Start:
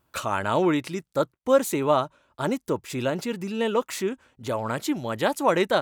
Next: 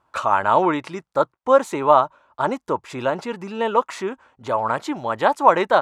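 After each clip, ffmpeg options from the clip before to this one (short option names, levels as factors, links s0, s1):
-af "lowpass=7900,equalizer=f=960:t=o:w=1.7:g=14.5,volume=0.668"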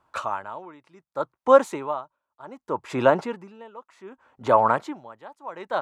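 -filter_complex "[0:a]acrossover=split=110|2000[s0][s1][s2];[s1]dynaudnorm=f=260:g=3:m=2.24[s3];[s0][s3][s2]amix=inputs=3:normalize=0,aeval=exprs='val(0)*pow(10,-26*(0.5-0.5*cos(2*PI*0.66*n/s))/20)':c=same,volume=0.891"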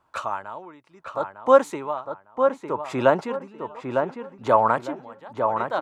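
-filter_complex "[0:a]asplit=2[s0][s1];[s1]adelay=904,lowpass=f=2200:p=1,volume=0.562,asplit=2[s2][s3];[s3]adelay=904,lowpass=f=2200:p=1,volume=0.28,asplit=2[s4][s5];[s5]adelay=904,lowpass=f=2200:p=1,volume=0.28,asplit=2[s6][s7];[s7]adelay=904,lowpass=f=2200:p=1,volume=0.28[s8];[s0][s2][s4][s6][s8]amix=inputs=5:normalize=0"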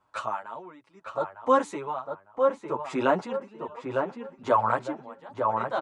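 -filter_complex "[0:a]aresample=22050,aresample=44100,asplit=2[s0][s1];[s1]adelay=7.9,afreqshift=1.3[s2];[s0][s2]amix=inputs=2:normalize=1"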